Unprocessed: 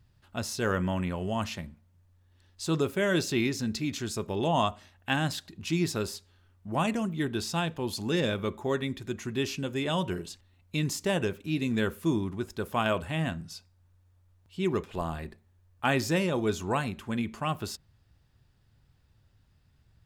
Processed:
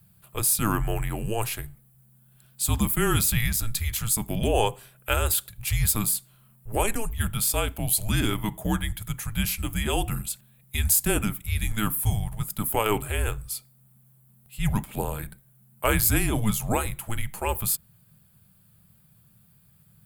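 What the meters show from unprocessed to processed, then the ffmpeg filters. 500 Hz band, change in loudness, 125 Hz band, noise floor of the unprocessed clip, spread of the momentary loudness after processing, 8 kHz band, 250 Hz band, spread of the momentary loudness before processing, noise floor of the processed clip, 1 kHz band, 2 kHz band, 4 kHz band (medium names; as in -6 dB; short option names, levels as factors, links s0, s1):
-0.5 dB, +4.5 dB, +5.5 dB, -65 dBFS, 11 LU, +14.0 dB, -0.5 dB, 11 LU, -59 dBFS, +2.0 dB, +2.0 dB, +3.0 dB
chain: -af "afreqshift=-220,aexciter=amount=9.4:drive=6.5:freq=8400,volume=1.5"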